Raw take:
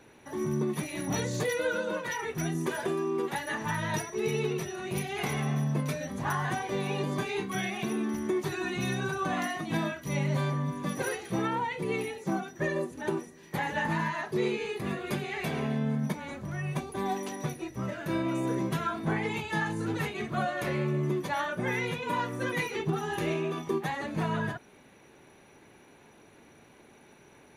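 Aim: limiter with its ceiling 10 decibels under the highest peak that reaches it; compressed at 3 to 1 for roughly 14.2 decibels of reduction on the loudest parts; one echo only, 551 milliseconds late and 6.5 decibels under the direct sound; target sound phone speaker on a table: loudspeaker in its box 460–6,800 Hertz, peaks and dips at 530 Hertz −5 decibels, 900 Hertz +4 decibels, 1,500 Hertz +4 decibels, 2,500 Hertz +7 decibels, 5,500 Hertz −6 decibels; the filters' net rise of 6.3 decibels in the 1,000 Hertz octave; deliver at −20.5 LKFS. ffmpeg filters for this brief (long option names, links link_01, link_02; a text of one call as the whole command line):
ffmpeg -i in.wav -af "equalizer=frequency=1000:width_type=o:gain=4.5,acompressor=threshold=-44dB:ratio=3,alimiter=level_in=15dB:limit=-24dB:level=0:latency=1,volume=-15dB,highpass=frequency=460:width=0.5412,highpass=frequency=460:width=1.3066,equalizer=frequency=530:width_type=q:width=4:gain=-5,equalizer=frequency=900:width_type=q:width=4:gain=4,equalizer=frequency=1500:width_type=q:width=4:gain=4,equalizer=frequency=2500:width_type=q:width=4:gain=7,equalizer=frequency=5500:width_type=q:width=4:gain=-6,lowpass=frequency=6800:width=0.5412,lowpass=frequency=6800:width=1.3066,aecho=1:1:551:0.473,volume=26.5dB" out.wav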